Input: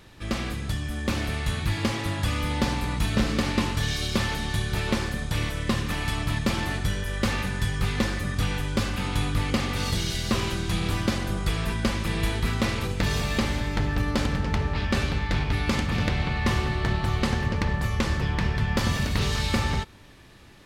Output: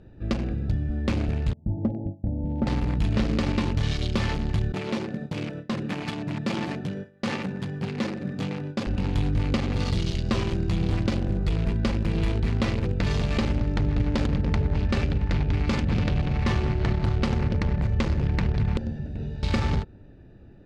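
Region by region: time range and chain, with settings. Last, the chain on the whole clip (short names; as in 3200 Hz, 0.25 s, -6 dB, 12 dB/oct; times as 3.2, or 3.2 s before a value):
1.53–2.67 gate with hold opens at -16 dBFS, closes at -26 dBFS + rippled Chebyshev low-pass 900 Hz, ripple 6 dB
4.72–8.87 HPF 150 Hz 24 dB/oct + gate with hold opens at -23 dBFS, closes at -29 dBFS
15.96–16.46 notch 2100 Hz, Q 9.6 + doubler 20 ms -12.5 dB
18.77–19.43 Butterworth band-stop 1200 Hz, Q 4.6 + resonator 75 Hz, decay 0.62 s, mix 80%
whole clip: Wiener smoothing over 41 samples; LPF 6100 Hz 12 dB/oct; limiter -19.5 dBFS; gain +4 dB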